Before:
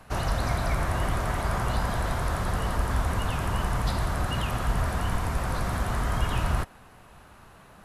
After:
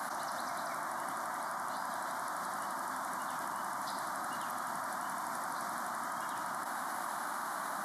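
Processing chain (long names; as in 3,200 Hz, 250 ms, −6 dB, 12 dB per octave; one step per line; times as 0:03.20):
high-pass filter 280 Hz 24 dB per octave
phaser with its sweep stopped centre 1,100 Hz, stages 4
envelope flattener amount 100%
level −6.5 dB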